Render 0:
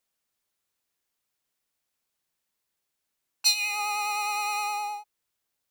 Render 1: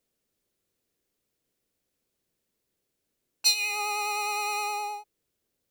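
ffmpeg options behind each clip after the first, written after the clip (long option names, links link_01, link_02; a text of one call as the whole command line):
ffmpeg -i in.wav -af "lowshelf=frequency=630:width_type=q:width=1.5:gain=9.5" out.wav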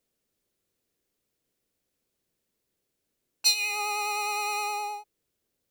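ffmpeg -i in.wav -af anull out.wav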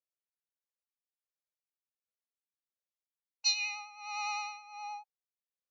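ffmpeg -i in.wav -af "tremolo=f=1.4:d=0.87,afftfilt=real='re*between(b*sr/4096,480,7200)':imag='im*between(b*sr/4096,480,7200)':win_size=4096:overlap=0.75,afftdn=noise_reduction=15:noise_floor=-48,volume=-5dB" out.wav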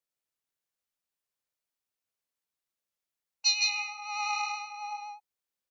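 ffmpeg -i in.wav -af "aecho=1:1:161:0.668,volume=3.5dB" out.wav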